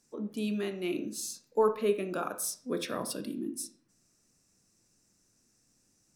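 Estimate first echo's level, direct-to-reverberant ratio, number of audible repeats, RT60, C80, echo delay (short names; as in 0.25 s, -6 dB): none, 8.5 dB, none, 0.50 s, 16.0 dB, none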